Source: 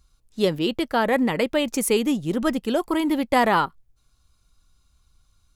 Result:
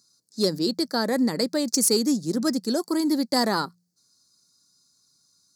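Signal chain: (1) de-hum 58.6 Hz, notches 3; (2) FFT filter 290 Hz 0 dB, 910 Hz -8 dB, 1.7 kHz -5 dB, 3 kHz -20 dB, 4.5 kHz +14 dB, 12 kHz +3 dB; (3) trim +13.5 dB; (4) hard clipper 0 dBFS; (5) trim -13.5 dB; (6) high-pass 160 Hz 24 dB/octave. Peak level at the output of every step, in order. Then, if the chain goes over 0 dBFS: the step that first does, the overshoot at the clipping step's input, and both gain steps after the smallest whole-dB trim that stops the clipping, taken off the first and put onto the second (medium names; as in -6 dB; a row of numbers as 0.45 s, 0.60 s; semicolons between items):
-7.0 dBFS, -7.0 dBFS, +6.5 dBFS, 0.0 dBFS, -13.5 dBFS, -8.5 dBFS; step 3, 6.5 dB; step 3 +6.5 dB, step 5 -6.5 dB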